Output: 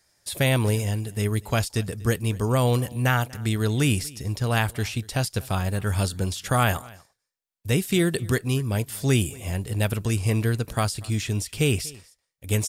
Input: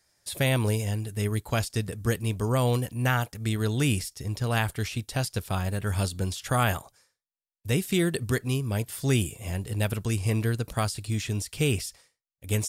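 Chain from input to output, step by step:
single-tap delay 241 ms −23 dB
level +3 dB

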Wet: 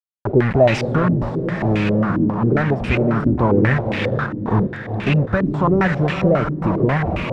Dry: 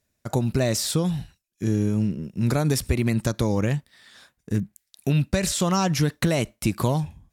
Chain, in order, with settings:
converter with a step at zero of −24.5 dBFS
bit reduction 5 bits
speech leveller 2 s
feedback delay with all-pass diffusion 457 ms, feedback 50%, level −6 dB
low-pass on a step sequencer 7.4 Hz 290–2,500 Hz

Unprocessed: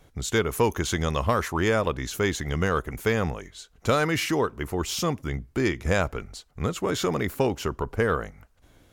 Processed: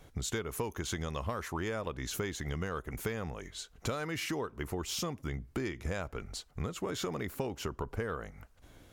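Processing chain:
downward compressor 6 to 1, threshold −33 dBFS, peak gain reduction 15.5 dB

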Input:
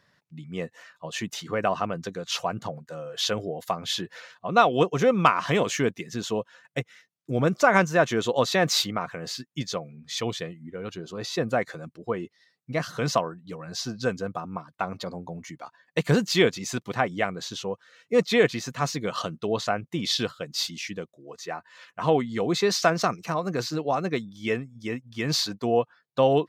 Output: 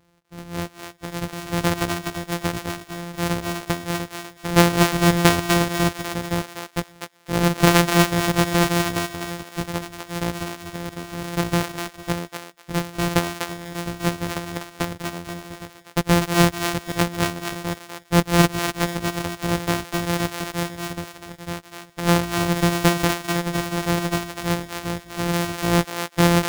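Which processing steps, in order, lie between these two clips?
samples sorted by size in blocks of 256 samples
feedback echo with a high-pass in the loop 247 ms, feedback 18%, high-pass 790 Hz, level −4 dB
level +3.5 dB

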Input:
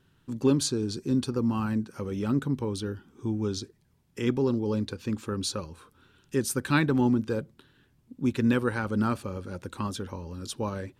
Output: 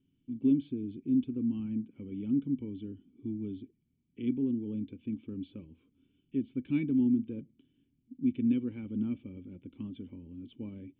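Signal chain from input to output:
formant resonators in series i

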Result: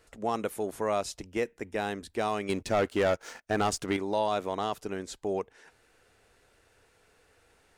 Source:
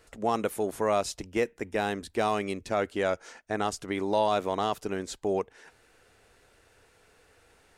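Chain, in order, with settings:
0:02.49–0:03.97: leveller curve on the samples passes 2
level −3 dB

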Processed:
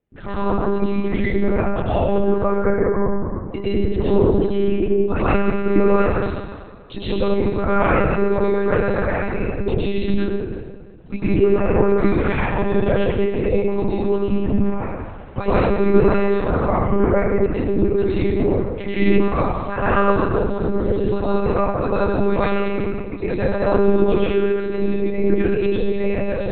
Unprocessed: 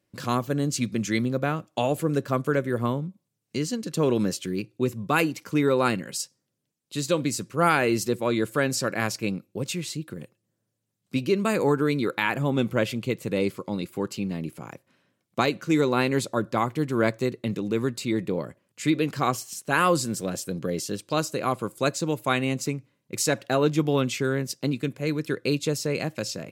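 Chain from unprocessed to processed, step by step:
camcorder AGC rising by 28 dB per second
gate on every frequency bin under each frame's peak −25 dB strong
high-shelf EQ 2,200 Hz −9 dB
in parallel at −12 dB: soft clipping −13 dBFS, distortion −20 dB
on the sum: convolution reverb RT60 1.8 s, pre-delay 93 ms, DRR −11 dB
one-pitch LPC vocoder at 8 kHz 200 Hz
level −5.5 dB

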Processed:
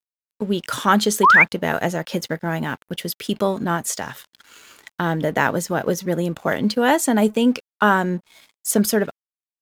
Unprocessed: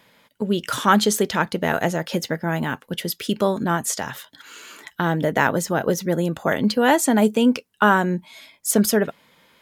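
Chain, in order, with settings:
dead-zone distortion −45.5 dBFS
sound drawn into the spectrogram rise, 0:01.23–0:01.44, 920–2,500 Hz −11 dBFS

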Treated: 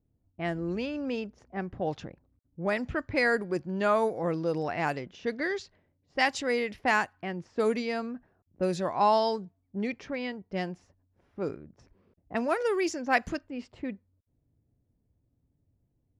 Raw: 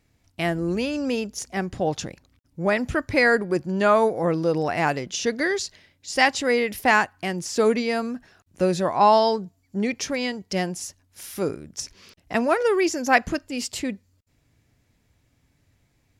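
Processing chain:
low-pass that shuts in the quiet parts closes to 480 Hz, open at −16.5 dBFS
level −7 dB

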